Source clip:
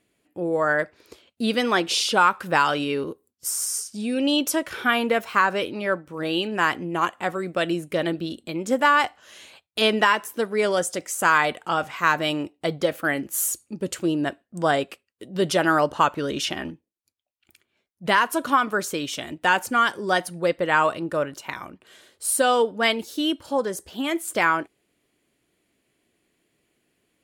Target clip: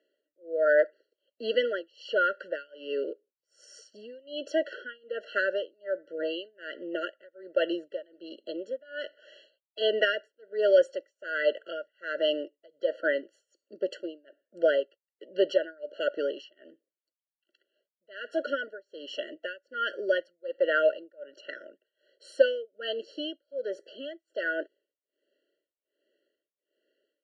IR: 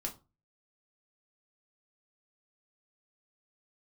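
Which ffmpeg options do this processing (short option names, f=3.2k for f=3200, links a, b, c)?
-af "tremolo=f=1.3:d=0.98,highpass=f=390:w=0.5412,highpass=f=390:w=1.3066,equalizer=f=580:t=q:w=4:g=7,equalizer=f=870:t=q:w=4:g=-9,equalizer=f=1.7k:t=q:w=4:g=-7,equalizer=f=3.4k:t=q:w=4:g=-5,lowpass=f=4k:w=0.5412,lowpass=f=4k:w=1.3066,afftfilt=real='re*eq(mod(floor(b*sr/1024/670),2),0)':imag='im*eq(mod(floor(b*sr/1024/670),2),0)':win_size=1024:overlap=0.75"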